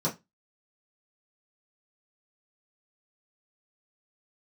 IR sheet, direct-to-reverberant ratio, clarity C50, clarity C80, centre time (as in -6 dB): -7.5 dB, 15.0 dB, 24.5 dB, 16 ms